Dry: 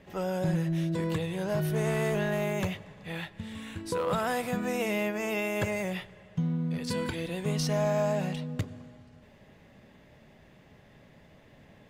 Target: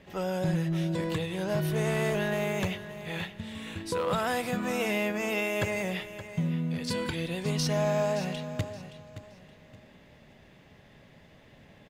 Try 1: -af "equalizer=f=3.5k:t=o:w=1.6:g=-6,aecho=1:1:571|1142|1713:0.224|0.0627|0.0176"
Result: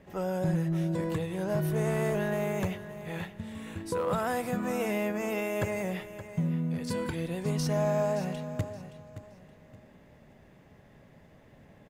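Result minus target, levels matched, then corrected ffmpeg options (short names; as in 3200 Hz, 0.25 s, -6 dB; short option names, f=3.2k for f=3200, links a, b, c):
4000 Hz band -7.5 dB
-af "equalizer=f=3.5k:t=o:w=1.6:g=3.5,aecho=1:1:571|1142|1713:0.224|0.0627|0.0176"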